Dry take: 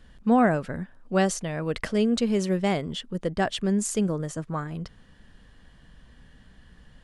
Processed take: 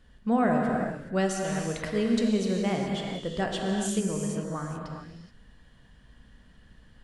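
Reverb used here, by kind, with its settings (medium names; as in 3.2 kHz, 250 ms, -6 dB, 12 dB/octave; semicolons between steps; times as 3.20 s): gated-style reverb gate 450 ms flat, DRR 0 dB; trim -5.5 dB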